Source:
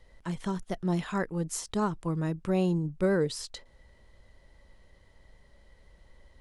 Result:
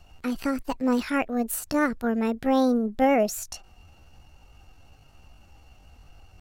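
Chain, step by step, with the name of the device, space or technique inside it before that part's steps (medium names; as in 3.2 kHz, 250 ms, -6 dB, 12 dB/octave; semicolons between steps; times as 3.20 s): chipmunk voice (pitch shift +6 st); trim +5 dB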